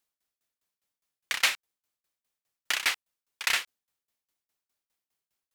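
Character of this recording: tremolo saw down 4.9 Hz, depth 100%

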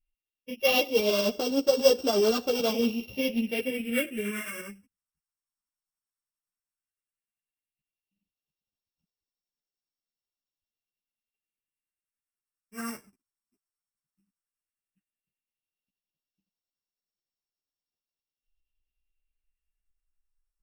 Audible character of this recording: a buzz of ramps at a fixed pitch in blocks of 16 samples; phasing stages 4, 0.13 Hz, lowest notch 500–2100 Hz; tremolo saw up 10 Hz, depth 45%; a shimmering, thickened sound

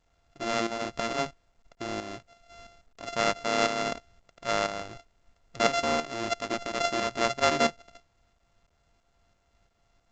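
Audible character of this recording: a buzz of ramps at a fixed pitch in blocks of 64 samples; tremolo saw up 3 Hz, depth 65%; A-law

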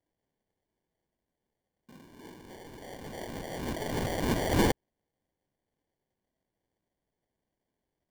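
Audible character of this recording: phasing stages 8, 3.2 Hz, lowest notch 500–1300 Hz; aliases and images of a low sample rate 1300 Hz, jitter 0%

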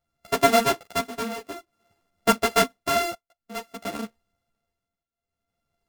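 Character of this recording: a buzz of ramps at a fixed pitch in blocks of 64 samples; tremolo triangle 0.54 Hz, depth 90%; a shimmering, thickened sound

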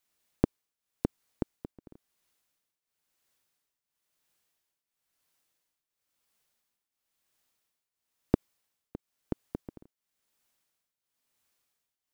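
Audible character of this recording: tremolo triangle 0.98 Hz, depth 85%

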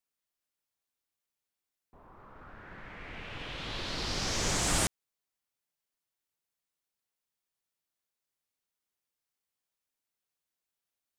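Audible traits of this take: noise floor -89 dBFS; spectral tilt -2.5 dB/oct

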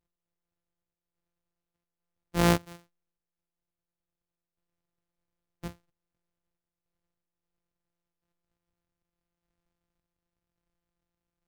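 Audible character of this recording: a buzz of ramps at a fixed pitch in blocks of 256 samples; random-step tremolo

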